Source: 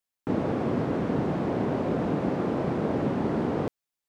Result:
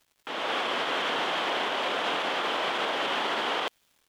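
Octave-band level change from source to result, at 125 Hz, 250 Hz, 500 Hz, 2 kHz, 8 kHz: -24.0 dB, -14.0 dB, -4.0 dB, +12.5 dB, no reading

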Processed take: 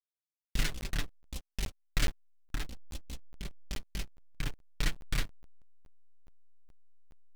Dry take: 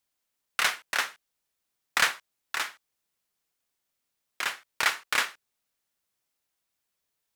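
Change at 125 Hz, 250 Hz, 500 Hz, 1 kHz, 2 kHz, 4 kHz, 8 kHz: no reading, +9.5 dB, -5.5 dB, -16.5 dB, -14.0 dB, -9.0 dB, -8.5 dB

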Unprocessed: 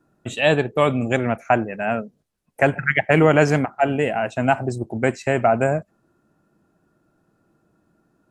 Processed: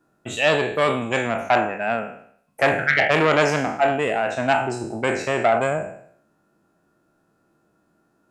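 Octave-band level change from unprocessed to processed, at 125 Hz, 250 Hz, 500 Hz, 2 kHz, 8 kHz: -7.0 dB, -4.5 dB, -1.0 dB, +1.5 dB, +2.5 dB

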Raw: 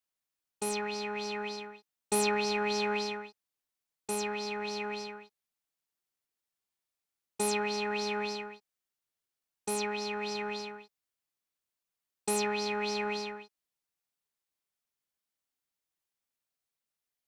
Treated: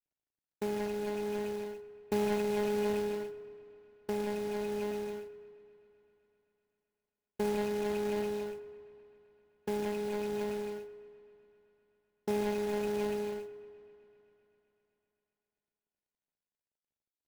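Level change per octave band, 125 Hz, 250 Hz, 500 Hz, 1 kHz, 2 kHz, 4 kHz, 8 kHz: no reading, +2.0 dB, +2.0 dB, -6.0 dB, -9.0 dB, -11.0 dB, -13.0 dB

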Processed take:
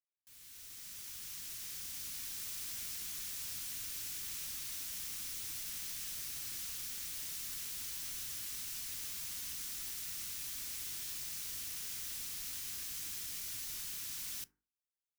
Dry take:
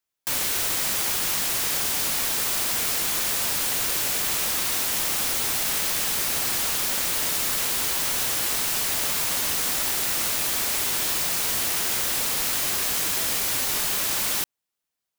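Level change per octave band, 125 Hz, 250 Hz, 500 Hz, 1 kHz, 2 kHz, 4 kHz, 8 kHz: -18.5 dB, -23.5 dB, -31.5 dB, -28.5 dB, -22.5 dB, -18.5 dB, -17.0 dB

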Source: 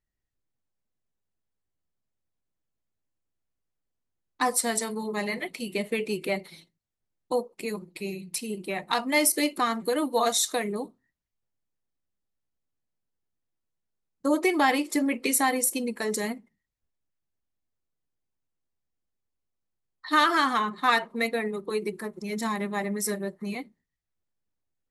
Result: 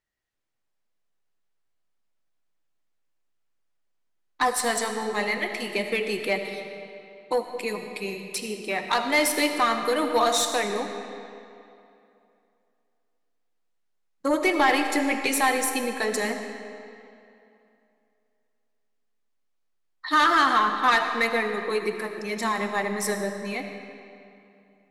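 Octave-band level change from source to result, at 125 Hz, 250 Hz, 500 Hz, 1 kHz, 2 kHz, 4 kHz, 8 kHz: no reading, -0.5 dB, +3.0 dB, +4.0 dB, +4.5 dB, +3.0 dB, -1.5 dB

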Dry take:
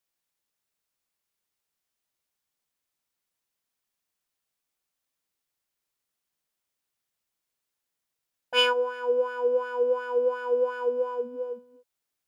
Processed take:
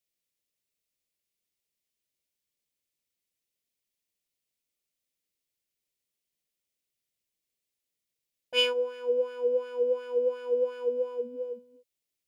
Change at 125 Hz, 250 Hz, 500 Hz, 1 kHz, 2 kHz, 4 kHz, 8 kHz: no reading, -2.0 dB, -2.0 dB, -13.5 dB, -7.0 dB, -2.0 dB, -2.0 dB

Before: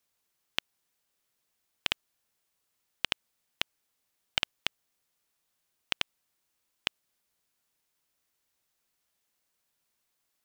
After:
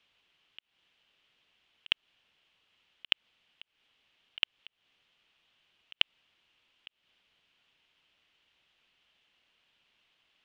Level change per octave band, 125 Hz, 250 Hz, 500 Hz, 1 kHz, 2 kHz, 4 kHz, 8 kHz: under -10 dB, -10.0 dB, -10.0 dB, -9.0 dB, -2.0 dB, +0.5 dB, under -20 dB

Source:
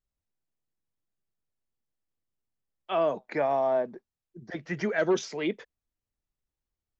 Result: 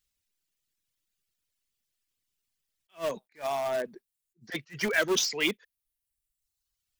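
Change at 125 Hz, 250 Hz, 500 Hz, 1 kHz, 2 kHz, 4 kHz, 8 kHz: -5.0 dB, -3.5 dB, -4.5 dB, -5.0 dB, +5.0 dB, +10.5 dB, no reading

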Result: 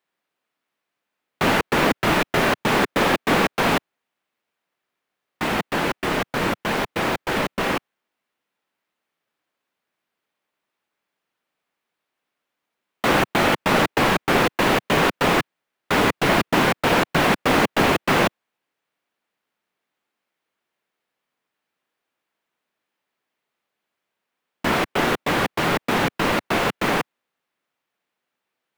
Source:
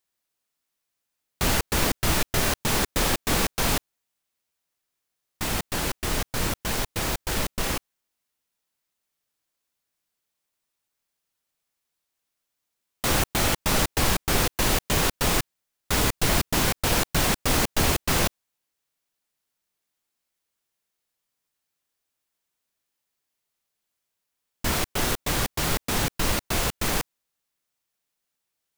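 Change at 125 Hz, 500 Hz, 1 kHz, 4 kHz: +0.5 dB, +8.5 dB, +8.5 dB, +1.5 dB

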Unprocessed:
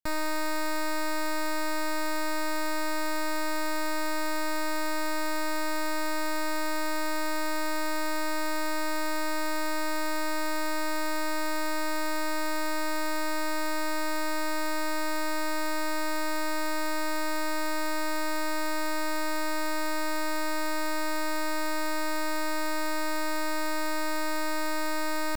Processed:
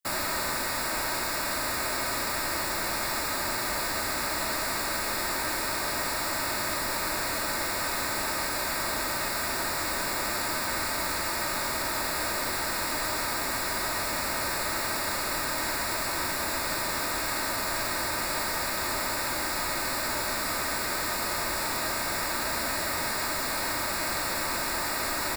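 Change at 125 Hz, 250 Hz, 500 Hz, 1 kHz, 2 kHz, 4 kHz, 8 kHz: no reading, -5.5 dB, -2.0 dB, +0.5 dB, +2.0 dB, +5.5 dB, +7.5 dB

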